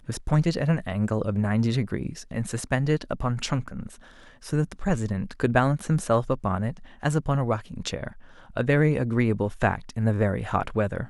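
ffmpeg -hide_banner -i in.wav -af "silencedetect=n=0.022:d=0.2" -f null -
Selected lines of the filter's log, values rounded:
silence_start: 3.87
silence_end: 4.46 | silence_duration: 0.59
silence_start: 6.77
silence_end: 7.03 | silence_duration: 0.26
silence_start: 8.08
silence_end: 8.56 | silence_duration: 0.48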